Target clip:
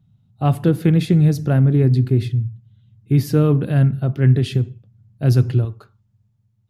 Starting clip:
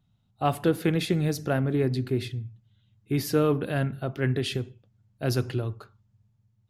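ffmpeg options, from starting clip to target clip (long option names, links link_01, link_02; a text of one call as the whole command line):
ffmpeg -i in.wav -af "asetnsamples=nb_out_samples=441:pad=0,asendcmd='5.65 equalizer g 3.5',equalizer=frequency=130:width=0.62:gain=14" out.wav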